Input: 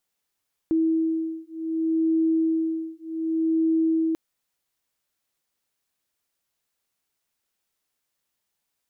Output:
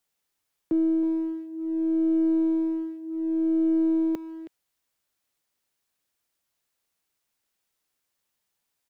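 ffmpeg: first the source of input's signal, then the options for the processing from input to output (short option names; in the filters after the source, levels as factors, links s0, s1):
-f lavfi -i "aevalsrc='0.0631*(sin(2*PI*323*t)+sin(2*PI*323.66*t))':d=3.44:s=44100"
-filter_complex "[0:a]acrossover=split=110|250[s0][s1][s2];[s1]aeval=exprs='clip(val(0),-1,0.00708)':c=same[s3];[s0][s3][s2]amix=inputs=3:normalize=0,asplit=2[s4][s5];[s5]adelay=320,highpass=300,lowpass=3400,asoftclip=type=hard:threshold=0.0562,volume=0.282[s6];[s4][s6]amix=inputs=2:normalize=0"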